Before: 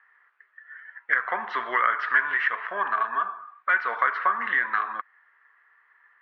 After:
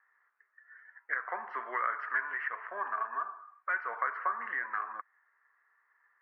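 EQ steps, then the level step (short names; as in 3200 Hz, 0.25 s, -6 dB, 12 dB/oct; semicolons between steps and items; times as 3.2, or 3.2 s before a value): running mean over 12 samples; HPF 320 Hz 12 dB/oct; -7.5 dB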